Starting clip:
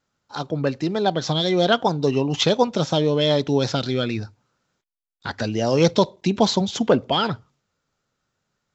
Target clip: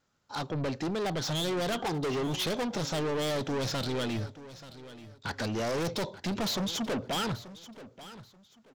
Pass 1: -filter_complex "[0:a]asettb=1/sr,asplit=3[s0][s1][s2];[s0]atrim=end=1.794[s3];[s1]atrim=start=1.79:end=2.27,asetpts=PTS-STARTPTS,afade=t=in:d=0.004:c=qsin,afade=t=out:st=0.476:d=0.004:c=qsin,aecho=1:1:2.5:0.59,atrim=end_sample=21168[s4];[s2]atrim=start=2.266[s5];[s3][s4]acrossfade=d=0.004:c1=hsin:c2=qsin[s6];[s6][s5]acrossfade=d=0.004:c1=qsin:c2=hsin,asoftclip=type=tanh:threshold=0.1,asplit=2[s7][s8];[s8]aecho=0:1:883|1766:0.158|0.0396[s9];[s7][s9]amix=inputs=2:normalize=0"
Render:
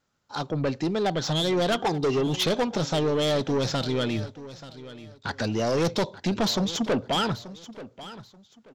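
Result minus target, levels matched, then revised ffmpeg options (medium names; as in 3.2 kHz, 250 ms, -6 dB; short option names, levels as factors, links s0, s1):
saturation: distortion -4 dB
-filter_complex "[0:a]asettb=1/sr,asplit=3[s0][s1][s2];[s0]atrim=end=1.794[s3];[s1]atrim=start=1.79:end=2.27,asetpts=PTS-STARTPTS,afade=t=in:d=0.004:c=qsin,afade=t=out:st=0.476:d=0.004:c=qsin,aecho=1:1:2.5:0.59,atrim=end_sample=21168[s4];[s2]atrim=start=2.266[s5];[s3][s4]acrossfade=d=0.004:c1=hsin:c2=qsin[s6];[s6][s5]acrossfade=d=0.004:c1=qsin:c2=hsin,asoftclip=type=tanh:threshold=0.0355,asplit=2[s7][s8];[s8]aecho=0:1:883|1766:0.158|0.0396[s9];[s7][s9]amix=inputs=2:normalize=0"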